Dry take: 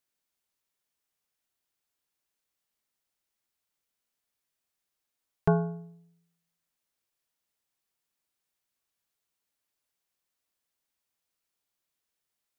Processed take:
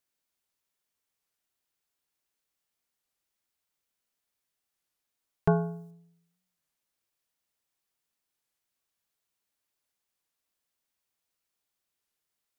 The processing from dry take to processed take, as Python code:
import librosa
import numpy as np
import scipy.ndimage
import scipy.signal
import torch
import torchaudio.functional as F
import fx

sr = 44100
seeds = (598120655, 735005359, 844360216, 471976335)

y = fx.bass_treble(x, sr, bass_db=-1, treble_db=10, at=(5.51, 5.91))
y = fx.record_warp(y, sr, rpm=33.33, depth_cents=160.0)